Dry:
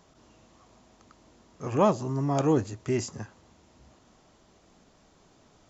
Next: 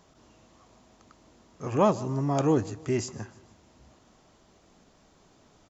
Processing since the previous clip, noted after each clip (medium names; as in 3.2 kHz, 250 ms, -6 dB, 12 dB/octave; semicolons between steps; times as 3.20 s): feedback delay 152 ms, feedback 48%, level -21 dB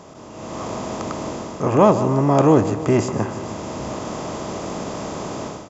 spectral levelling over time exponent 0.6; dynamic bell 5.6 kHz, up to -7 dB, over -51 dBFS, Q 0.75; level rider gain up to 15 dB; trim -1 dB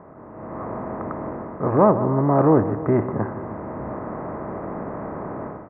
steep low-pass 1.9 kHz 48 dB/octave; trim -2 dB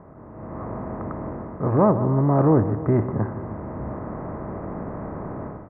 bass shelf 150 Hz +12 dB; trim -4 dB